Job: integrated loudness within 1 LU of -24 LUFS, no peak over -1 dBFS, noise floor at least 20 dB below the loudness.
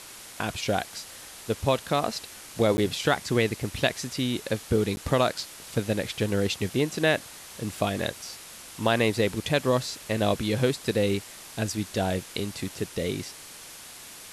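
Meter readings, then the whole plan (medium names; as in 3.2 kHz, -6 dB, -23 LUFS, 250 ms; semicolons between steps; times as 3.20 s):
dropouts 2; longest dropout 10 ms; noise floor -45 dBFS; noise floor target -48 dBFS; loudness -27.5 LUFS; peak level -9.0 dBFS; loudness target -24.0 LUFS
-> interpolate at 2.77/4.96 s, 10 ms; noise reduction 6 dB, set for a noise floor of -45 dBFS; trim +3.5 dB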